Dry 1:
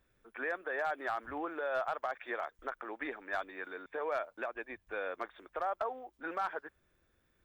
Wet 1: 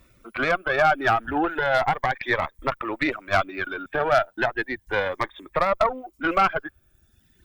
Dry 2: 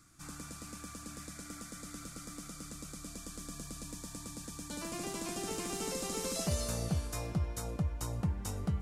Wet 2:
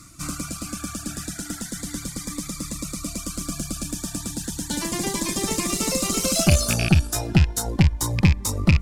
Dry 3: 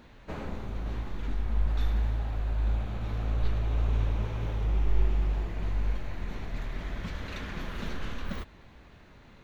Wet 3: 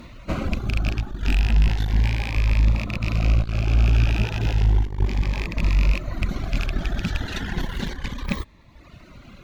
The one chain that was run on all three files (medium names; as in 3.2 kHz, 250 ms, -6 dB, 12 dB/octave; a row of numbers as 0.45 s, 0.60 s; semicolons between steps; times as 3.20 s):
rattle on loud lows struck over -30 dBFS, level -23 dBFS; reverb removal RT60 1.2 s; valve stage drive 28 dB, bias 0.65; peaking EQ 460 Hz -7 dB 0.26 oct; Shepard-style phaser rising 0.34 Hz; normalise loudness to -24 LUFS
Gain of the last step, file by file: +22.0 dB, +21.0 dB, +16.5 dB